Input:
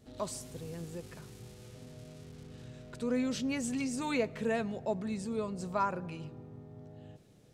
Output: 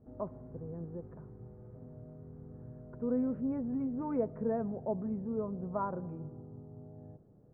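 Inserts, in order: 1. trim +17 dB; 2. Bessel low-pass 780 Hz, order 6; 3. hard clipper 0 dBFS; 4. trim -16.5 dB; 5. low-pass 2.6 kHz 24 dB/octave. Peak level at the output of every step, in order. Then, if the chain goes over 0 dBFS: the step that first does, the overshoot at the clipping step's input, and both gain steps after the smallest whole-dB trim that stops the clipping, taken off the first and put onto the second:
-2.0 dBFS, -4.0 dBFS, -4.0 dBFS, -20.5 dBFS, -20.5 dBFS; nothing clips

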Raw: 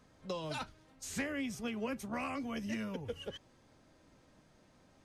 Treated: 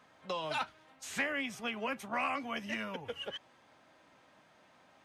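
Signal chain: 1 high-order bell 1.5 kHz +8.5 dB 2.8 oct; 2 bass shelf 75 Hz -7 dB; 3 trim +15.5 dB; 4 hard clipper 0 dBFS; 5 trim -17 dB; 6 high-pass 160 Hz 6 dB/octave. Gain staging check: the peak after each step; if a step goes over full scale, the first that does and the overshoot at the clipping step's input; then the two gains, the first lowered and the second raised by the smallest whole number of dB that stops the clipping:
-20.0 dBFS, -19.5 dBFS, -4.0 dBFS, -4.0 dBFS, -21.0 dBFS, -20.5 dBFS; nothing clips

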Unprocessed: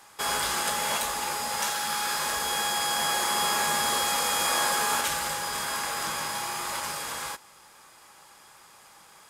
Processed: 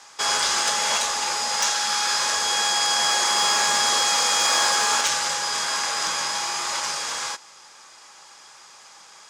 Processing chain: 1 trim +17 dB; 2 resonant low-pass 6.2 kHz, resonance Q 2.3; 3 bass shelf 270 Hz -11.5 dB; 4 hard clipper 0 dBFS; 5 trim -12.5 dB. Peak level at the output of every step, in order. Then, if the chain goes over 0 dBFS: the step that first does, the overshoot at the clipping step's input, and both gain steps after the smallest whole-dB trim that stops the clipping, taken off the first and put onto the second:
+4.0 dBFS, +6.0 dBFS, +5.5 dBFS, 0.0 dBFS, -12.5 dBFS; step 1, 5.5 dB; step 1 +11 dB, step 5 -6.5 dB

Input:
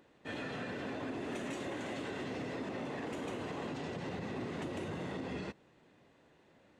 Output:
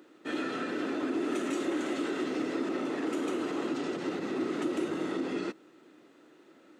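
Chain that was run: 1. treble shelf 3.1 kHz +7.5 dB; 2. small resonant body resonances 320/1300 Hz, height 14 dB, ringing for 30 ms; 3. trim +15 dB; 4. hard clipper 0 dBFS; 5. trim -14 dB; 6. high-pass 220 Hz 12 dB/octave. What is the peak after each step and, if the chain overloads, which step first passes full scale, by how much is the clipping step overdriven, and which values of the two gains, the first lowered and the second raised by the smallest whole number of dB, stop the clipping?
-29.0 dBFS, -20.5 dBFS, -5.5 dBFS, -5.5 dBFS, -19.5 dBFS, -20.0 dBFS; nothing clips

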